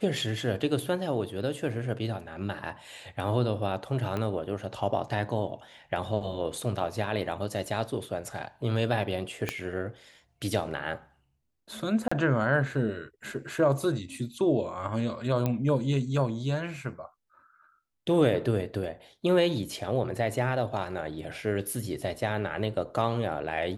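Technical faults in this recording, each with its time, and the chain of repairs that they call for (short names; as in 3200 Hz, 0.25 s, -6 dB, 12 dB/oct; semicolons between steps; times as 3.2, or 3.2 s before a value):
4.17 pop -19 dBFS
9.49 pop -13 dBFS
12.08–12.12 gap 35 ms
15.46 pop -15 dBFS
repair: de-click; interpolate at 12.08, 35 ms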